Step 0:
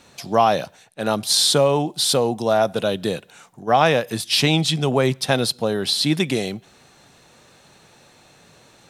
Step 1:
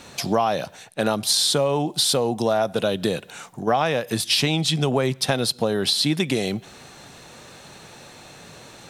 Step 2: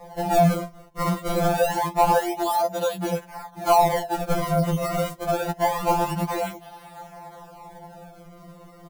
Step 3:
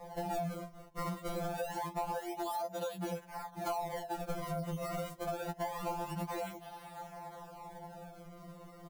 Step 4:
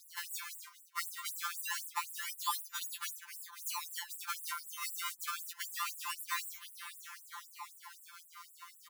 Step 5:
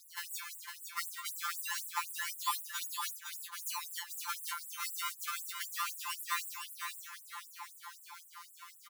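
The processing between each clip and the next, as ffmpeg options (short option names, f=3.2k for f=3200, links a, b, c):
-af "acompressor=threshold=-27dB:ratio=4,volume=7.5dB"
-af "acrusher=samples=30:mix=1:aa=0.000001:lfo=1:lforange=48:lforate=0.26,firequalizer=gain_entry='entry(190,0);entry(290,-7);entry(790,13);entry(1200,0);entry(2700,-5);entry(13000,1)':delay=0.05:min_phase=1,afftfilt=real='re*2.83*eq(mod(b,8),0)':imag='im*2.83*eq(mod(b,8),0)':win_size=2048:overlap=0.75"
-af "acompressor=threshold=-30dB:ratio=5,volume=-5.5dB"
-af "afftfilt=real='re*gte(b*sr/1024,860*pow(7600/860,0.5+0.5*sin(2*PI*3.9*pts/sr)))':imag='im*gte(b*sr/1024,860*pow(7600/860,0.5+0.5*sin(2*PI*3.9*pts/sr)))':win_size=1024:overlap=0.75,volume=11dB"
-af "aecho=1:1:507:0.531"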